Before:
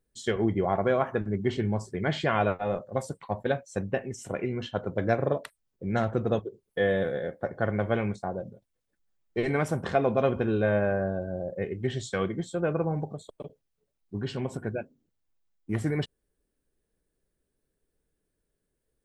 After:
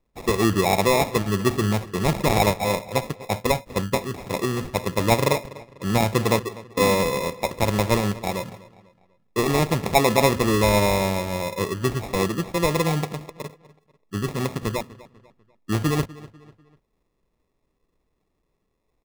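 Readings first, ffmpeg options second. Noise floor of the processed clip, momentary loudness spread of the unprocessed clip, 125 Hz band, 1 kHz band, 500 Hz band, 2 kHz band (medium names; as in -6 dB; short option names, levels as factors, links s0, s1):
-73 dBFS, 10 LU, +6.5 dB, +9.0 dB, +4.5 dB, +6.5 dB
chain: -filter_complex "[0:a]acrusher=samples=29:mix=1:aa=0.000001,asplit=2[s0][s1];[s1]adelay=247,lowpass=f=4800:p=1,volume=0.112,asplit=2[s2][s3];[s3]adelay=247,lowpass=f=4800:p=1,volume=0.41,asplit=2[s4][s5];[s5]adelay=247,lowpass=f=4800:p=1,volume=0.41[s6];[s0][s2][s4][s6]amix=inputs=4:normalize=0,volume=2"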